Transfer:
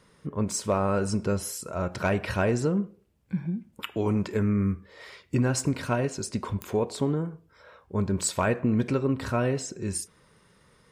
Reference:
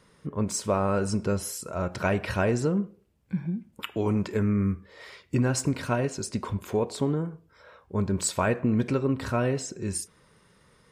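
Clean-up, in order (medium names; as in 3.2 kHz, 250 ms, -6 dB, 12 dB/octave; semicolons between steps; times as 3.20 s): clip repair -14.5 dBFS; de-click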